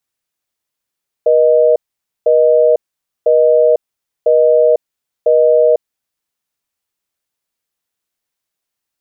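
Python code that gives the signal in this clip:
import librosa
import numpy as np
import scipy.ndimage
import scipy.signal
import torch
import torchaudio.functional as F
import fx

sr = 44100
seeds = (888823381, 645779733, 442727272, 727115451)

y = fx.call_progress(sr, length_s=4.56, kind='busy tone', level_db=-9.5)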